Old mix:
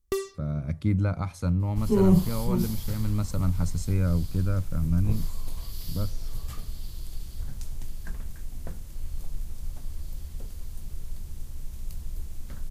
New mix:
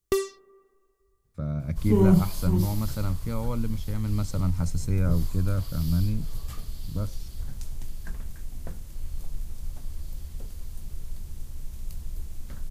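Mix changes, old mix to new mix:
speech: entry +1.00 s; first sound +4.0 dB

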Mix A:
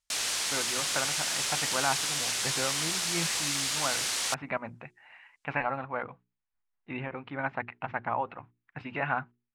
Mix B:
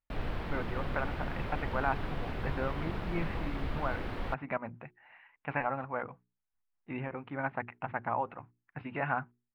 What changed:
background: remove frequency weighting ITU-R 468; master: add distance through air 440 m

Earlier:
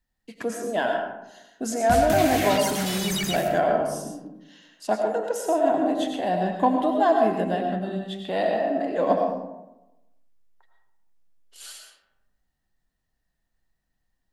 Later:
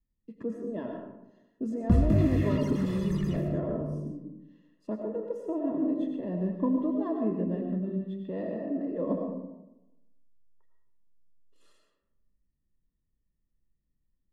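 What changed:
background +7.5 dB; master: add boxcar filter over 58 samples

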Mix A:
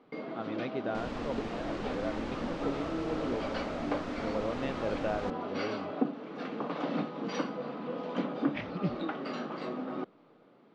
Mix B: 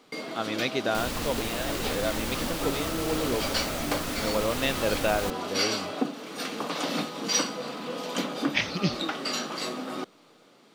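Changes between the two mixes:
speech +4.5 dB; second sound: add tone controls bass +8 dB, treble -10 dB; master: remove tape spacing loss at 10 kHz 45 dB

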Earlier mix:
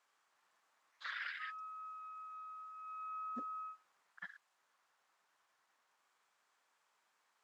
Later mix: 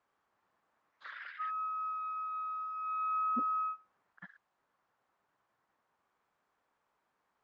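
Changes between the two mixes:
speech: add tilt EQ -4.5 dB/octave; background +11.5 dB

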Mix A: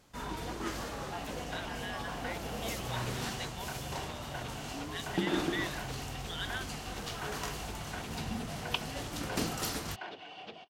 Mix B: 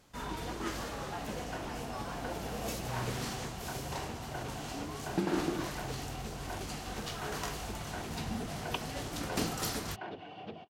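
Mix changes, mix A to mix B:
speech: muted; second sound: add tilt EQ -3.5 dB/octave

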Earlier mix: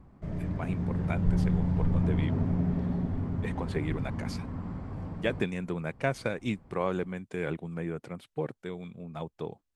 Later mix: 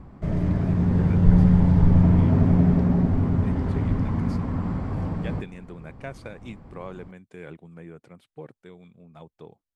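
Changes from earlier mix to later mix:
speech -8.0 dB; background +10.0 dB

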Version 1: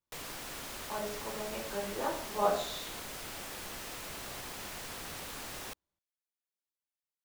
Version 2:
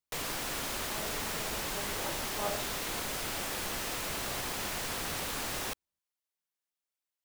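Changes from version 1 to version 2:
speech -7.5 dB; background +7.0 dB

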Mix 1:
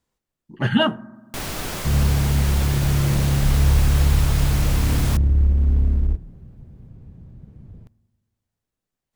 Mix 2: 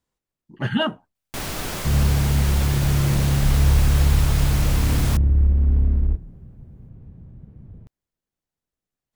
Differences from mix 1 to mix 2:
speech: send off; second sound: add distance through air 270 m

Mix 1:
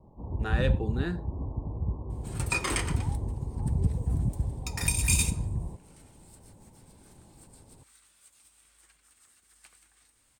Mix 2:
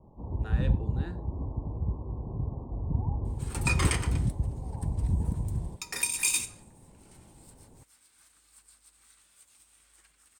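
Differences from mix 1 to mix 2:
speech -10.0 dB; second sound: entry +1.15 s

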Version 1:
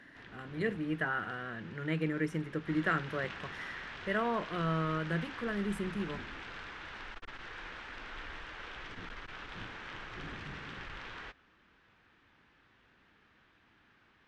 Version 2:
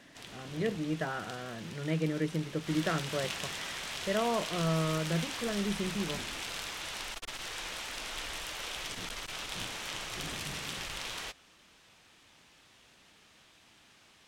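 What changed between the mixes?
background: remove tape spacing loss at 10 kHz 37 dB; master: add fifteen-band graphic EQ 160 Hz +3 dB, 630 Hz +6 dB, 1.6 kHz -7 dB

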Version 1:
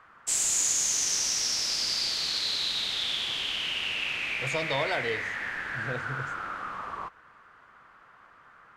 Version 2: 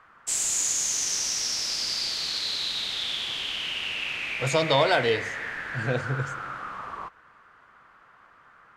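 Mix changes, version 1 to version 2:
speech +6.5 dB; reverb: on, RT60 2.2 s

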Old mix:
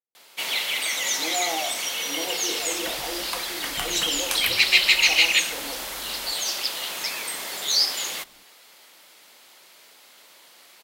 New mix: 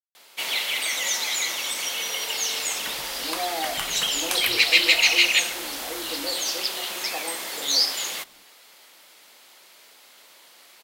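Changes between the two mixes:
speech: entry +2.05 s; master: add bass shelf 110 Hz -6.5 dB

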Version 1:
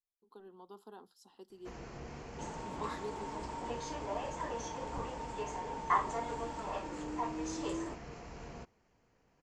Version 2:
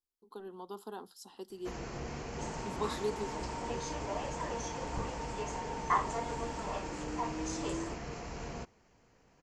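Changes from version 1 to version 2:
speech +8.0 dB; first sound +5.5 dB; master: add treble shelf 6.1 kHz +6.5 dB

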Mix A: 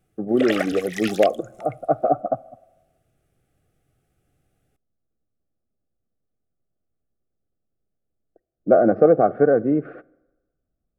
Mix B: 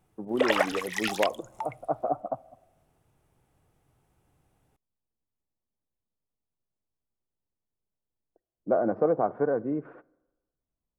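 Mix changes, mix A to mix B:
speech -10.0 dB; master: remove Butterworth band-stop 960 Hz, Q 2.3

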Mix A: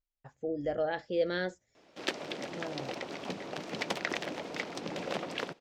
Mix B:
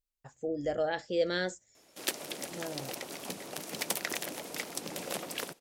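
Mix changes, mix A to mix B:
background -4.0 dB; master: remove distance through air 180 m

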